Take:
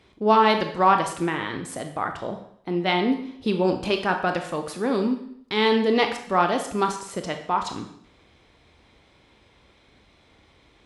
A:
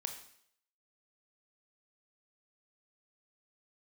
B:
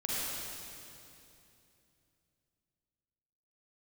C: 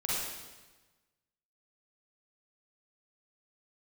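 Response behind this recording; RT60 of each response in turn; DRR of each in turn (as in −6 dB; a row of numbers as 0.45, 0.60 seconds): A; 0.65, 2.8, 1.2 seconds; 5.0, −7.5, −7.5 decibels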